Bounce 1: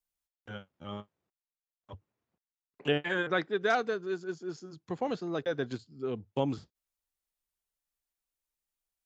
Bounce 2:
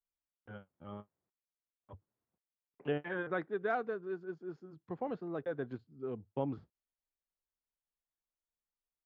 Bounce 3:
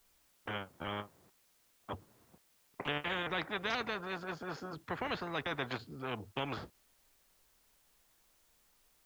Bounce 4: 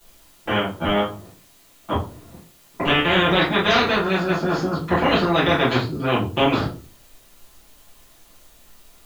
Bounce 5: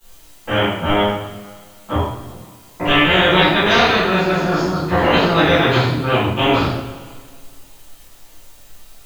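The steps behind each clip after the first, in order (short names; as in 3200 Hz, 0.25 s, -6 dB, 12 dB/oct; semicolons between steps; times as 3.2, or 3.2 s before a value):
LPF 1600 Hz 12 dB/oct; gain -5.5 dB
spectral compressor 4:1; gain +1 dB
reverb RT60 0.35 s, pre-delay 6 ms, DRR -10 dB; gain +8 dB
two-slope reverb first 0.62 s, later 2 s, from -16 dB, DRR -8 dB; gain -3.5 dB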